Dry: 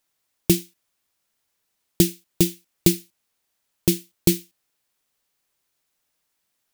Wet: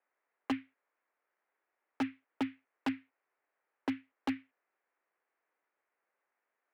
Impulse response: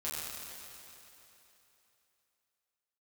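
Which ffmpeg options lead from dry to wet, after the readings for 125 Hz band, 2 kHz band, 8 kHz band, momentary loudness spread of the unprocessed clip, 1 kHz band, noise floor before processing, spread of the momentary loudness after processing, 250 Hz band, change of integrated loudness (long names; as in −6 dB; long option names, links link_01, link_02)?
−32.0 dB, −6.0 dB, below −35 dB, 5 LU, +4.0 dB, −76 dBFS, 3 LU, −13.0 dB, −16.5 dB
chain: -af "highpass=frequency=440:width_type=q:width=0.5412,highpass=frequency=440:width_type=q:width=1.307,lowpass=frequency=2200:width_type=q:width=0.5176,lowpass=frequency=2200:width_type=q:width=0.7071,lowpass=frequency=2200:width_type=q:width=1.932,afreqshift=-74,aeval=exprs='0.0562*(abs(mod(val(0)/0.0562+3,4)-2)-1)':channel_layout=same"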